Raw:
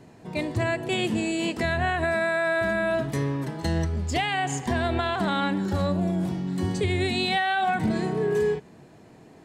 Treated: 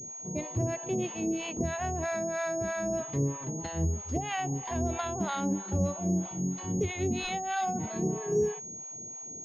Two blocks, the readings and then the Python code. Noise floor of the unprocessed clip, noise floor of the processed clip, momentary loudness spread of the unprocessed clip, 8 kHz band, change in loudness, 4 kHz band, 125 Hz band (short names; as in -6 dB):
-51 dBFS, -43 dBFS, 4 LU, +8.0 dB, -6.0 dB, -12.0 dB, -4.5 dB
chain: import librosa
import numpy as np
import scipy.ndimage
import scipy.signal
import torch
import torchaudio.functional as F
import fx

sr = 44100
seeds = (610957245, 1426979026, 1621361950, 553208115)

y = fx.peak_eq(x, sr, hz=1700.0, db=-9.5, octaves=0.68)
y = fx.harmonic_tremolo(y, sr, hz=3.1, depth_pct=100, crossover_hz=650.0)
y = fx.pwm(y, sr, carrier_hz=6600.0)